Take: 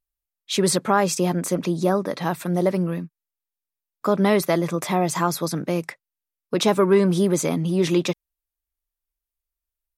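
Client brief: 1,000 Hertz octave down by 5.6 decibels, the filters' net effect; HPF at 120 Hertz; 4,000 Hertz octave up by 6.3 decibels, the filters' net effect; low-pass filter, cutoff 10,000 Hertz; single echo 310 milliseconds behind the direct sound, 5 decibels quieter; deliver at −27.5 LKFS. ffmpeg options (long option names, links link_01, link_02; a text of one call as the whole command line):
ffmpeg -i in.wav -af "highpass=120,lowpass=10000,equalizer=frequency=1000:width_type=o:gain=-8,equalizer=frequency=4000:width_type=o:gain=8,aecho=1:1:310:0.562,volume=-6dB" out.wav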